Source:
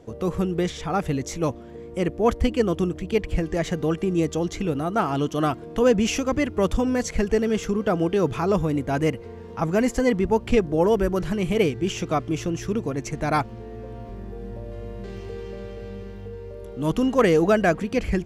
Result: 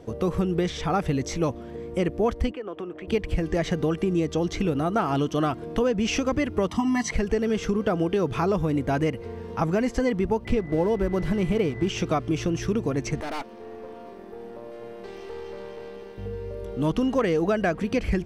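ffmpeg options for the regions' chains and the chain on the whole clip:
-filter_complex "[0:a]asettb=1/sr,asplit=3[a][b][c];[a]atrim=end=2.514[d];[b]atrim=start=2.51:end=3.08,asetpts=PTS-STARTPTS,afade=t=in:d=0.004:c=qsin,afade=t=out:st=0.566:d=0.004:c=qsin,highpass=f=150:p=1,acrossover=split=320 2800:gain=0.158 1 0.0794[e][f][g];[e][f][g]amix=inputs=3:normalize=0,acompressor=threshold=-34dB:ratio=4:attack=3.2:release=140:knee=1:detection=peak[h];[c]atrim=start=3.076[i];[d][h]acrossfade=d=0.004:c1=hsin:c2=qsin[j];[j][i]acrossfade=d=0.004:c1=qsin:c2=hsin,asettb=1/sr,asplit=3[k][l][m];[k]atrim=end=6.684[n];[l]atrim=start=6.68:end=7.12,asetpts=PTS-STARTPTS,afade=t=in:d=0.004:c=qsin,afade=t=out:st=0.436:d=0.004:c=qsin,highpass=200,bandreject=f=500:w=9.4,aecho=1:1:1:0.99,atrim=end_sample=19404[o];[m]atrim=start=7.116[p];[n][o]acrossfade=d=0.004:c1=hsin:c2=qsin[q];[q][p]acrossfade=d=0.004:c1=qsin:c2=hsin,asettb=1/sr,asplit=3[r][s][t];[r]atrim=end=10.454[u];[s]atrim=start=10.45:end=11.89,asetpts=PTS-STARTPTS,afade=t=in:d=0.004:c=qsin,afade=t=out:st=1.436:d=0.004:c=qsin,tiltshelf=f=750:g=3,aeval=exprs='sgn(val(0))*max(abs(val(0))-0.0106,0)':c=same,aeval=exprs='val(0)+0.00708*sin(2*PI*2000*n/s)':c=same[v];[t]atrim=start=11.886[w];[u][v]acrossfade=d=0.004:c1=hsin:c2=qsin[x];[x][w]acrossfade=d=0.004:c1=qsin:c2=hsin,asettb=1/sr,asplit=3[y][z][aa];[y]atrim=end=13.214[ab];[z]atrim=start=13.21:end=16.18,asetpts=PTS-STARTPTS,afade=t=in:d=0.004:c=qsin,afade=t=out:st=2.966:d=0.004:c=qsin,highpass=f=260:w=0.5412,highpass=f=260:w=1.3066,aeval=exprs='(tanh(44.7*val(0)+0.6)-tanh(0.6))/44.7':c=same[ac];[aa]atrim=start=16.176[ad];[ab][ac]acrossfade=d=0.004:c1=hsin:c2=qsin[ae];[ae][ad]acrossfade=d=0.004:c1=qsin:c2=hsin,acrossover=split=7300[af][ag];[ag]acompressor=threshold=-55dB:ratio=4:attack=1:release=60[ah];[af][ah]amix=inputs=2:normalize=0,bandreject=f=7k:w=8.8,acompressor=threshold=-23dB:ratio=6,volume=3dB"

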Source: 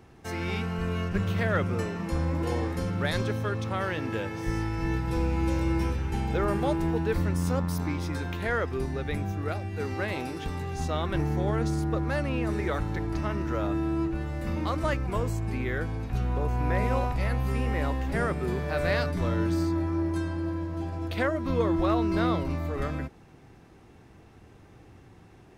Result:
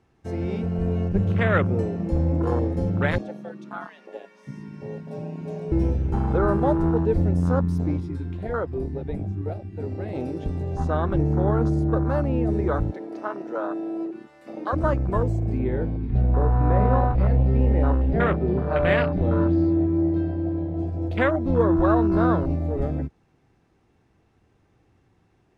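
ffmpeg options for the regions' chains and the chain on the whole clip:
-filter_complex "[0:a]asettb=1/sr,asplit=3[a][b][c];[a]atrim=end=3.184[d];[b]atrim=start=3.18:end=5.72,asetpts=PTS-STARTPTS,afade=t=in:d=0.004:c=qsin,afade=t=out:st=2.536:d=0.004:c=qsin,lowshelf=f=420:g=-10,flanger=delay=1.1:depth=1.9:regen=-49:speed=1.4:shape=sinusoidal,afreqshift=96[e];[c]atrim=start=5.716[f];[d][e]acrossfade=d=0.004:c1=hsin:c2=qsin[g];[g][f]acrossfade=d=0.004:c1=qsin:c2=hsin,asettb=1/sr,asplit=3[h][i][j];[h]atrim=end=8.004[k];[i]atrim=start=8:end=10.15,asetpts=PTS-STARTPTS,afade=t=in:d=0.004:c=qsin,afade=t=out:st=2.146:d=0.004:c=qsin,bandreject=f=6.2k:w=9.8,flanger=delay=4.3:depth=6.7:regen=-50:speed=1.8:shape=sinusoidal[l];[j]atrim=start=10.146[m];[k][l]acrossfade=d=0.004:c1=hsin:c2=qsin[n];[n][m]acrossfade=d=0.004:c1=qsin:c2=hsin,asettb=1/sr,asplit=3[o][p][q];[o]atrim=end=12.914[r];[p]atrim=start=12.91:end=14.73,asetpts=PTS-STARTPTS,afade=t=in:d=0.004:c=qsin,afade=t=out:st=1.816:d=0.004:c=qsin,highpass=440,equalizer=f=6.7k:w=6.6:g=-2.5[s];[q]atrim=start=14.726[t];[r][s]acrossfade=d=0.004:c1=hsin:c2=qsin[u];[u][t]acrossfade=d=0.004:c1=qsin:c2=hsin,asettb=1/sr,asplit=3[v][w][x];[v]atrim=end=15.594[y];[w]atrim=start=15.59:end=20.79,asetpts=PTS-STARTPTS,afade=t=in:d=0.004:c=qsin,afade=t=out:st=5.196:d=0.004:c=qsin,lowpass=f=4.4k:w=0.5412,lowpass=f=4.4k:w=1.3066,asplit=2[z][aa];[aa]adelay=31,volume=-8dB[ab];[z][ab]amix=inputs=2:normalize=0,atrim=end_sample=229320,aecho=1:1:430:0.15,atrim=end_sample=229320[ac];[x]atrim=start=20.786[ad];[y][ac]acrossfade=d=0.004:c1=hsin:c2=qsin[ae];[ae][ad]acrossfade=d=0.004:c1=qsin:c2=hsin,lowpass=10k,afwtdn=0.0316,volume=6dB"

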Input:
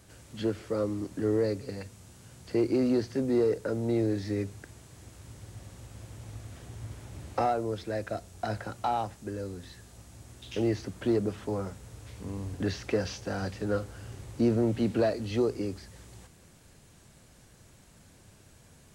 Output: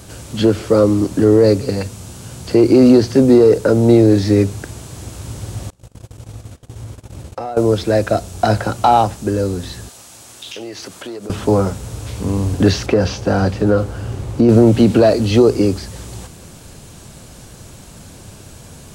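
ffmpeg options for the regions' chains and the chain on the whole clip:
-filter_complex "[0:a]asettb=1/sr,asplit=3[a][b][c];[a]atrim=end=5.704[d];[b]atrim=start=5.7:end=7.57,asetpts=PTS-STARTPTS,afade=t=in:d=0.004:c=qsin,afade=t=out:st=1.866:d=0.004:c=qsin,agate=range=-29dB:threshold=-44dB:ratio=16:release=100:detection=peak,equalizer=f=500:t=o:w=0.25:g=4,acompressor=threshold=-50dB:ratio=2.5:attack=3.2:release=140:knee=1:detection=peak[e];[c]atrim=start=7.566[f];[d][e]acrossfade=d=0.004:c1=hsin:c2=qsin[g];[g][f]acrossfade=d=0.004:c1=qsin:c2=hsin,asettb=1/sr,asplit=3[h][i][j];[h]atrim=end=9.894[k];[i]atrim=start=9.89:end=11.3,asetpts=PTS-STARTPTS,afade=t=in:d=0.004:c=qsin,afade=t=out:st=1.406:d=0.004:c=qsin,highpass=f=1.1k:p=1,acompressor=threshold=-45dB:ratio=6:attack=3.2:release=140:knee=1:detection=peak[l];[j]atrim=start=11.296[m];[k][l]acrossfade=d=0.004:c1=hsin:c2=qsin[n];[n][m]acrossfade=d=0.004:c1=qsin:c2=hsin,asettb=1/sr,asplit=3[o][p][q];[o]atrim=end=12.864[r];[p]atrim=start=12.86:end=14.49,asetpts=PTS-STARTPTS,afade=t=in:d=0.004:c=qsin,afade=t=out:st=1.626:d=0.004:c=qsin,highshelf=f=3.1k:g=-9,acompressor=threshold=-27dB:ratio=3:attack=3.2:release=140:knee=1:detection=peak[s];[q]atrim=start=14.486[t];[r][s]acrossfade=d=0.004:c1=hsin:c2=qsin[u];[u][t]acrossfade=d=0.004:c1=qsin:c2=hsin,equalizer=f=1.9k:t=o:w=0.59:g=-5.5,alimiter=level_in=19.5dB:limit=-1dB:release=50:level=0:latency=1,volume=-1dB"

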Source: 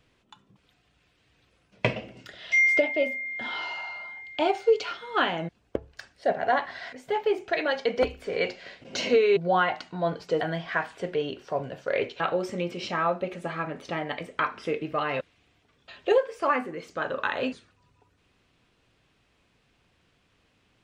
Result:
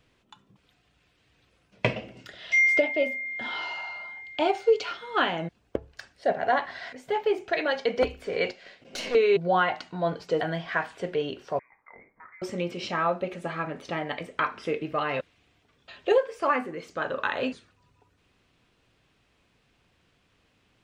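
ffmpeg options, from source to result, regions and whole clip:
-filter_complex "[0:a]asettb=1/sr,asplit=3[a][b][c];[a]atrim=end=8.514[d];[b]atrim=start=8.51:end=9.15,asetpts=PTS-STARTPTS,afade=t=in:d=0.004:c=qsin,afade=t=out:st=0.636:d=0.004:c=qsin,aeval=exprs='(tanh(17.8*val(0)+0.75)-tanh(0.75))/17.8':c=same,lowshelf=f=130:g=-7.5,bandreject=f=970:w=20[e];[c]atrim=start=9.146[f];[d][e]acrossfade=d=0.004:c1=hsin:c2=qsin[g];[g][f]acrossfade=d=0.004:c1=qsin:c2=hsin,asettb=1/sr,asplit=3[h][i][j];[h]atrim=end=11.594[k];[i]atrim=start=11.59:end=12.42,asetpts=PTS-STARTPTS,afade=t=in:d=0.004:c=qsin,afade=t=out:st=0.826:d=0.004:c=qsin,aderivative,acompressor=threshold=-47dB:ratio=2:attack=3.2:release=140:knee=1:detection=peak,lowpass=f=2.2k:t=q:w=0.5098,lowpass=f=2.2k:t=q:w=0.6013,lowpass=f=2.2k:t=q:w=0.9,lowpass=f=2.2k:t=q:w=2.563,afreqshift=-2600[l];[j]atrim=start=12.416[m];[k][l]acrossfade=d=0.004:c1=hsin:c2=qsin[n];[n][m]acrossfade=d=0.004:c1=qsin:c2=hsin"

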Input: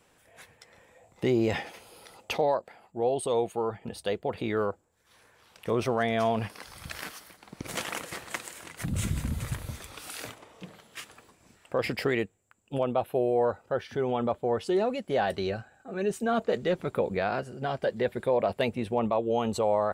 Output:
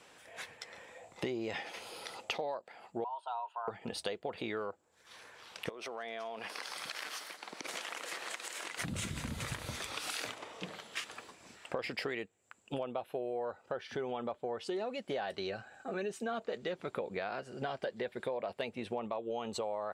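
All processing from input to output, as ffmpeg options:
-filter_complex "[0:a]asettb=1/sr,asplit=3[a][b][c];[a]atrim=end=3.044[d];[b]atrim=start=3.04:end=3.68,asetpts=PTS-STARTPTS,afade=t=in:d=0.004:c=qsin,afade=t=out:st=0.636:d=0.004:c=qsin,asplit=3[e][f][g];[e]bandpass=f=730:t=q:w=8,volume=0dB[h];[f]bandpass=f=1.09k:t=q:w=8,volume=-6dB[i];[g]bandpass=f=2.44k:t=q:w=8,volume=-9dB[j];[h][i][j]amix=inputs=3:normalize=0,afreqshift=240[k];[c]atrim=start=3.676[l];[d][k]acrossfade=d=0.004:c1=hsin:c2=qsin[m];[m][l]acrossfade=d=0.004:c1=qsin:c2=hsin,asettb=1/sr,asplit=3[n][o][p];[n]atrim=end=5.694[q];[o]atrim=start=5.69:end=8.78,asetpts=PTS-STARTPTS,afade=t=in:d=0.004:c=qsin,afade=t=out:st=3.086:d=0.004:c=qsin,highpass=320,acompressor=threshold=-42dB:ratio=8:attack=3.2:release=140:knee=1:detection=peak[r];[p]atrim=start=8.776[s];[q][r]acrossfade=d=0.004:c1=hsin:c2=qsin[t];[t][s]acrossfade=d=0.004:c1=qsin:c2=hsin,lowpass=4.5k,aemphasis=mode=production:type=bsi,acompressor=threshold=-41dB:ratio=6,volume=5.5dB"

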